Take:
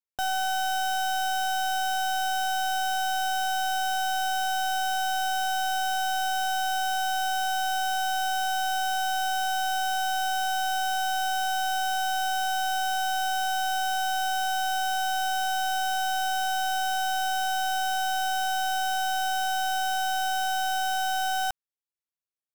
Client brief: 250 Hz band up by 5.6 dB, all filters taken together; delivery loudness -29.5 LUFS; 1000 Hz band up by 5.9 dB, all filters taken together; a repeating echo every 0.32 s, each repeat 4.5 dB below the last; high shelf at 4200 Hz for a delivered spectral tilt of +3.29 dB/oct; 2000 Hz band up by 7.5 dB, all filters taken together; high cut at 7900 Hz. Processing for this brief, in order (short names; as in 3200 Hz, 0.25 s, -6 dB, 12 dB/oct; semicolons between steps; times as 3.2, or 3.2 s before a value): LPF 7900 Hz; bell 250 Hz +6.5 dB; bell 1000 Hz +8 dB; bell 2000 Hz +8 dB; high shelf 4200 Hz -7 dB; feedback echo 0.32 s, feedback 60%, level -4.5 dB; gain -8 dB